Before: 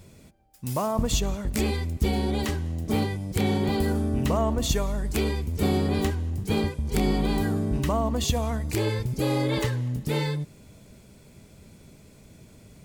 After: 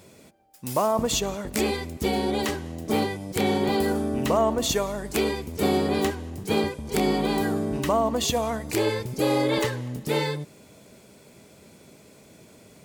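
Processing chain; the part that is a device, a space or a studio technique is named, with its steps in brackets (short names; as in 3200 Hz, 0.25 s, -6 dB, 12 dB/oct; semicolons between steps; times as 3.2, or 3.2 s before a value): filter by subtraction (in parallel: LPF 480 Hz 12 dB/oct + phase invert); on the sum: gain +3 dB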